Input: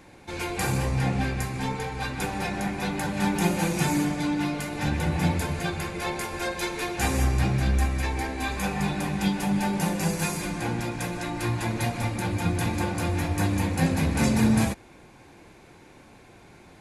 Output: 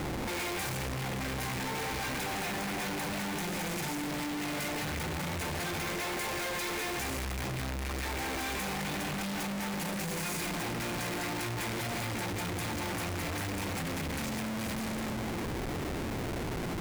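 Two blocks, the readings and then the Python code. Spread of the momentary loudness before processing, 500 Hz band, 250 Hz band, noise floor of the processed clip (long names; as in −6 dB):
6 LU, −5.5 dB, −9.5 dB, −35 dBFS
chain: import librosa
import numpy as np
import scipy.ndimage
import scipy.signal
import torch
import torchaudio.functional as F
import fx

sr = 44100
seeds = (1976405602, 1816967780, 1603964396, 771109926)

p1 = fx.echo_feedback(x, sr, ms=205, feedback_pct=53, wet_db=-18.5)
p2 = fx.fuzz(p1, sr, gain_db=41.0, gate_db=-39.0)
p3 = p1 + (p2 * librosa.db_to_amplitude(-5.0))
p4 = fx.over_compress(p3, sr, threshold_db=-26.0, ratio=-1.0)
p5 = fx.low_shelf(p4, sr, hz=170.0, db=-6.0)
p6 = fx.schmitt(p5, sr, flips_db=-40.5)
p7 = fx.peak_eq(p6, sr, hz=2100.0, db=3.0, octaves=0.42)
y = p7 * librosa.db_to_amplitude(-7.0)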